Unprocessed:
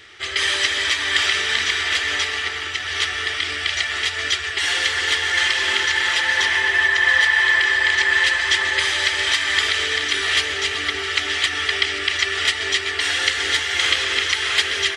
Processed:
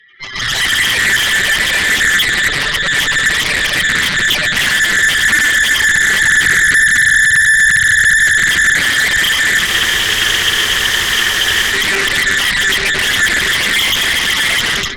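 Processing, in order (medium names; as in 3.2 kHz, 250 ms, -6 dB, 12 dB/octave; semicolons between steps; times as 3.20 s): spectral contrast enhancement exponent 3.7; high-pass 400 Hz; peak limiter -18.5 dBFS, peak gain reduction 13 dB; level rider gain up to 12 dB; Chebyshev shaper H 3 -24 dB, 6 -11 dB, 8 -32 dB, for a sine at -6.5 dBFS; filtered feedback delay 90 ms, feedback 73%, low-pass 870 Hz, level -10 dB; spectral freeze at 9.68 s, 2.04 s; loudspeaker Doppler distortion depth 0.38 ms; trim +1 dB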